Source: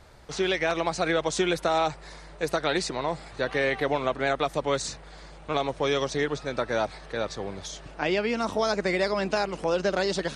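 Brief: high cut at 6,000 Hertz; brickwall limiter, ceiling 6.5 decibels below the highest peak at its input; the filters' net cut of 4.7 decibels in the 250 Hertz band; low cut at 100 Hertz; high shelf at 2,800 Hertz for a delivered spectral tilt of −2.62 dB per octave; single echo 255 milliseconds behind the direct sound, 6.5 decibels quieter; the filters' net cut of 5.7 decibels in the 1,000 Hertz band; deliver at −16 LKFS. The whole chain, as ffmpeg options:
ffmpeg -i in.wav -af "highpass=100,lowpass=6000,equalizer=frequency=250:width_type=o:gain=-6.5,equalizer=frequency=1000:width_type=o:gain=-9,highshelf=frequency=2800:gain=8,alimiter=limit=-18dB:level=0:latency=1,aecho=1:1:255:0.473,volume=13.5dB" out.wav

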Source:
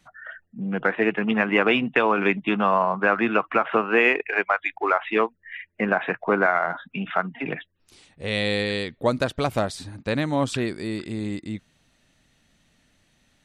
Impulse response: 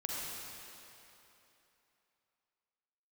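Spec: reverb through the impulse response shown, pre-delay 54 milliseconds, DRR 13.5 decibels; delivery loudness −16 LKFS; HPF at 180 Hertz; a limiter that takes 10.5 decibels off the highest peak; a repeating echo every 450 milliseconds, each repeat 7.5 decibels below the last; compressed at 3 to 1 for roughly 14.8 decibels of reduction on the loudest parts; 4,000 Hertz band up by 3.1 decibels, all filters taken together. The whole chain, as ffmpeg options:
-filter_complex "[0:a]highpass=180,equalizer=frequency=4000:width_type=o:gain=4,acompressor=threshold=-36dB:ratio=3,alimiter=level_in=3.5dB:limit=-24dB:level=0:latency=1,volume=-3.5dB,aecho=1:1:450|900|1350|1800|2250:0.422|0.177|0.0744|0.0312|0.0131,asplit=2[link_01][link_02];[1:a]atrim=start_sample=2205,adelay=54[link_03];[link_02][link_03]afir=irnorm=-1:irlink=0,volume=-16.5dB[link_04];[link_01][link_04]amix=inputs=2:normalize=0,volume=22.5dB"

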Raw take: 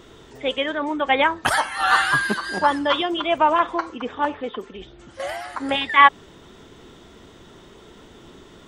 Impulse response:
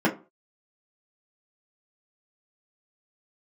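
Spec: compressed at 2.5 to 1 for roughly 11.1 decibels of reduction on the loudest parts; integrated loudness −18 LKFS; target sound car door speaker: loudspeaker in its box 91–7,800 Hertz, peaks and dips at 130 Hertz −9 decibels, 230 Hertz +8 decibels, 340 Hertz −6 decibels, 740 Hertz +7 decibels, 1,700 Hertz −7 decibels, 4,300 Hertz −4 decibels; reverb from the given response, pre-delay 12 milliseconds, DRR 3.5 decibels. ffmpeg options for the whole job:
-filter_complex "[0:a]acompressor=threshold=-24dB:ratio=2.5,asplit=2[link_01][link_02];[1:a]atrim=start_sample=2205,adelay=12[link_03];[link_02][link_03]afir=irnorm=-1:irlink=0,volume=-18.5dB[link_04];[link_01][link_04]amix=inputs=2:normalize=0,highpass=91,equalizer=frequency=130:width_type=q:width=4:gain=-9,equalizer=frequency=230:width_type=q:width=4:gain=8,equalizer=frequency=340:width_type=q:width=4:gain=-6,equalizer=frequency=740:width_type=q:width=4:gain=7,equalizer=frequency=1700:width_type=q:width=4:gain=-7,equalizer=frequency=4300:width_type=q:width=4:gain=-4,lowpass=frequency=7800:width=0.5412,lowpass=frequency=7800:width=1.3066,volume=6dB"

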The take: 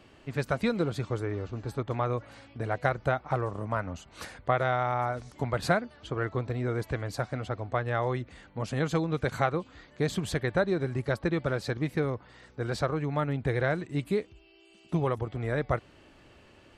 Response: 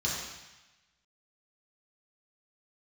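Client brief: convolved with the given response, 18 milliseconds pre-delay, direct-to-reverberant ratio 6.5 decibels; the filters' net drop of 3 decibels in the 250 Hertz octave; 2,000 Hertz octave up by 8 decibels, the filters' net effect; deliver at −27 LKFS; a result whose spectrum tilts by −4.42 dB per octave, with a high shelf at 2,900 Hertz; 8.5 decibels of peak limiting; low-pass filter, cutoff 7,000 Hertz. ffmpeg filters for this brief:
-filter_complex "[0:a]lowpass=7000,equalizer=frequency=250:width_type=o:gain=-5,equalizer=frequency=2000:width_type=o:gain=9,highshelf=frequency=2900:gain=5,alimiter=limit=-15dB:level=0:latency=1,asplit=2[link_01][link_02];[1:a]atrim=start_sample=2205,adelay=18[link_03];[link_02][link_03]afir=irnorm=-1:irlink=0,volume=-14dB[link_04];[link_01][link_04]amix=inputs=2:normalize=0,volume=2.5dB"

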